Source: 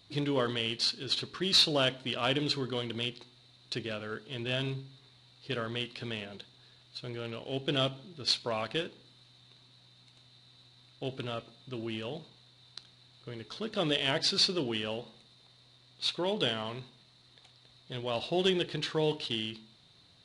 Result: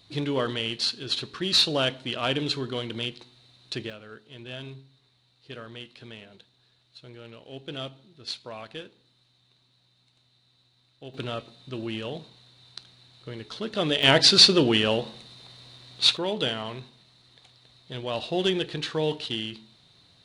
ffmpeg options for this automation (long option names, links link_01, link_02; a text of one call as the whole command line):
ffmpeg -i in.wav -af "asetnsamples=nb_out_samples=441:pad=0,asendcmd='3.9 volume volume -6dB;11.14 volume volume 4.5dB;14.03 volume volume 12dB;16.17 volume volume 3dB',volume=3dB" out.wav